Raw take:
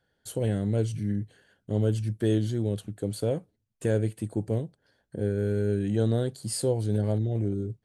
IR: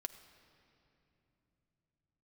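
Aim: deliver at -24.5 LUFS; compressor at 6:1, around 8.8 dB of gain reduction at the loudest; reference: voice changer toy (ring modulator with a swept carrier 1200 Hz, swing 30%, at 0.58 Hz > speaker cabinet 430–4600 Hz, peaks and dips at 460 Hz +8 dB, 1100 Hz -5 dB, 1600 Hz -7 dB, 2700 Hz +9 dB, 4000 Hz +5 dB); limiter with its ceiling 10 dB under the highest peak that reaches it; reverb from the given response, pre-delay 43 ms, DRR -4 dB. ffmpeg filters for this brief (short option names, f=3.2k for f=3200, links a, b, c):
-filter_complex "[0:a]acompressor=threshold=-30dB:ratio=6,alimiter=level_in=6dB:limit=-24dB:level=0:latency=1,volume=-6dB,asplit=2[a][b];[1:a]atrim=start_sample=2205,adelay=43[c];[b][c]afir=irnorm=-1:irlink=0,volume=7dB[d];[a][d]amix=inputs=2:normalize=0,aeval=exprs='val(0)*sin(2*PI*1200*n/s+1200*0.3/0.58*sin(2*PI*0.58*n/s))':c=same,highpass=430,equalizer=f=460:t=q:w=4:g=8,equalizer=f=1.1k:t=q:w=4:g=-5,equalizer=f=1.6k:t=q:w=4:g=-7,equalizer=f=2.7k:t=q:w=4:g=9,equalizer=f=4k:t=q:w=4:g=5,lowpass=f=4.6k:w=0.5412,lowpass=f=4.6k:w=1.3066,volume=15dB"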